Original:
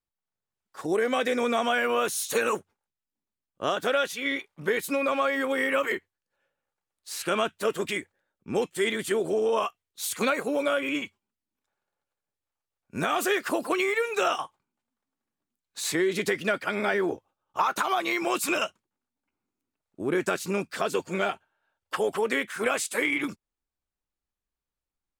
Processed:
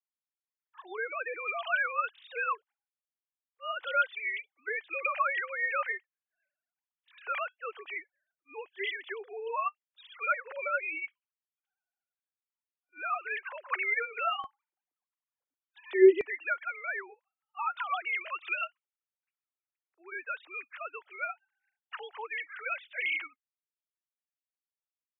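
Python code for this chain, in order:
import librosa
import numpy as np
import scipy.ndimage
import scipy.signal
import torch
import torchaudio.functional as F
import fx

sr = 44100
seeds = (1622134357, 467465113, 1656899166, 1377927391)

y = fx.sine_speech(x, sr)
y = fx.highpass(y, sr, hz=fx.steps((0.0, 1200.0), (14.44, 210.0), (16.21, 1500.0)), slope=12)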